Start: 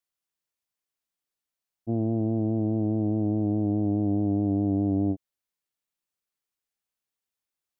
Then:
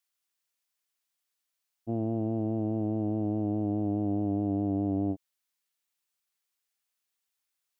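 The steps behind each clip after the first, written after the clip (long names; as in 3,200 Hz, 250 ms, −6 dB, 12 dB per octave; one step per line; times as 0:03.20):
tilt shelving filter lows −5.5 dB, about 750 Hz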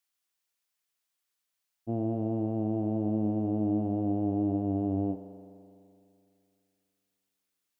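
spring reverb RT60 2.6 s, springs 42 ms, chirp 65 ms, DRR 8 dB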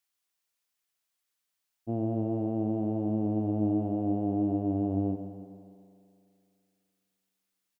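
repeating echo 142 ms, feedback 51%, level −12.5 dB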